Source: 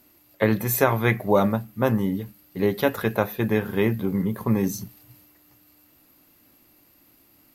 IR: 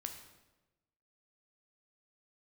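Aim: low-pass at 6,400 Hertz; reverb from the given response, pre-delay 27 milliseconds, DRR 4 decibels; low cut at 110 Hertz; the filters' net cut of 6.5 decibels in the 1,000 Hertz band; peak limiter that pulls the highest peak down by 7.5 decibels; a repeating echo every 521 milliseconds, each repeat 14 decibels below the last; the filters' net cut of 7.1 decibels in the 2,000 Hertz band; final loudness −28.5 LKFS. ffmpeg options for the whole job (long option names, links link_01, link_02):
-filter_complex "[0:a]highpass=110,lowpass=6400,equalizer=frequency=1000:width_type=o:gain=-7,equalizer=frequency=2000:width_type=o:gain=-6.5,alimiter=limit=-15dB:level=0:latency=1,aecho=1:1:521|1042:0.2|0.0399,asplit=2[link_01][link_02];[1:a]atrim=start_sample=2205,adelay=27[link_03];[link_02][link_03]afir=irnorm=-1:irlink=0,volume=-1.5dB[link_04];[link_01][link_04]amix=inputs=2:normalize=0,volume=-2.5dB"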